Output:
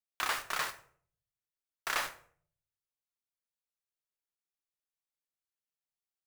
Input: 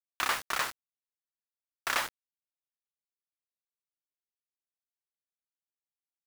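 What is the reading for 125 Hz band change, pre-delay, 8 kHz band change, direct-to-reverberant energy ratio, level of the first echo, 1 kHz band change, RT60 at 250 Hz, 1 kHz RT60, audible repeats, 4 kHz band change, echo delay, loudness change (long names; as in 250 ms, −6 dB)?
−2.5 dB, 4 ms, −3.0 dB, 7.5 dB, no echo audible, −3.0 dB, 0.65 s, 0.50 s, no echo audible, −3.0 dB, no echo audible, −3.0 dB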